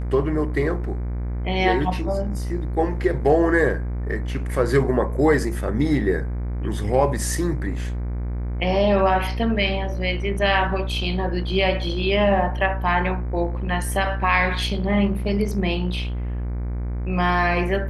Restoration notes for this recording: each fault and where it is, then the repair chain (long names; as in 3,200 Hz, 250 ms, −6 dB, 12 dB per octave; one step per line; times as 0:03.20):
mains buzz 60 Hz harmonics 40 −26 dBFS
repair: hum removal 60 Hz, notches 40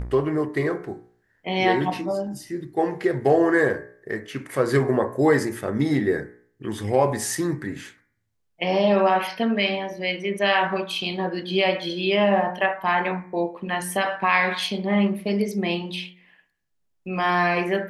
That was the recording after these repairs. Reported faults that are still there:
none of them is left